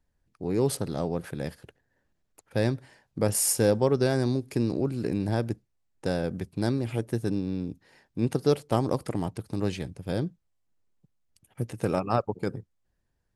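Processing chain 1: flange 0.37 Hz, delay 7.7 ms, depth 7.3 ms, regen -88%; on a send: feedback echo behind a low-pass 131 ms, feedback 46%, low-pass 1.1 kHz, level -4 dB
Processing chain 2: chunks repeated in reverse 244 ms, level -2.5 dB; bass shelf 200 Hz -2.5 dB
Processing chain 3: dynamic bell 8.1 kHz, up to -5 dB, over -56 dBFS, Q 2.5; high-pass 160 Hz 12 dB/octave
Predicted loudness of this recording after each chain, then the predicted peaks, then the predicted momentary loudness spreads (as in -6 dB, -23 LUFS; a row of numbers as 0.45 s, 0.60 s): -32.0 LUFS, -27.5 LUFS, -30.0 LUFS; -13.0 dBFS, -7.5 dBFS, -9.5 dBFS; 14 LU, 16 LU, 14 LU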